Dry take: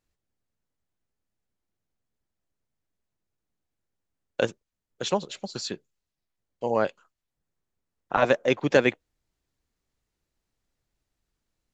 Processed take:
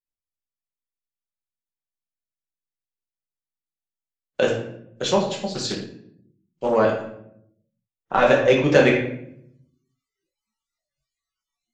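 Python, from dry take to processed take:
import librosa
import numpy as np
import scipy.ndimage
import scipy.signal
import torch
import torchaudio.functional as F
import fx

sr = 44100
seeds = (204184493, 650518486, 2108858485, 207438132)

p1 = fx.room_shoebox(x, sr, seeds[0], volume_m3=140.0, walls='mixed', distance_m=1.1)
p2 = 10.0 ** (-19.5 / 20.0) * np.tanh(p1 / 10.0 ** (-19.5 / 20.0))
p3 = p1 + (p2 * 10.0 ** (-8.0 / 20.0))
p4 = fx.noise_reduce_blind(p3, sr, reduce_db=30)
y = fx.doppler_dist(p4, sr, depth_ms=0.2, at=(5.5, 6.76))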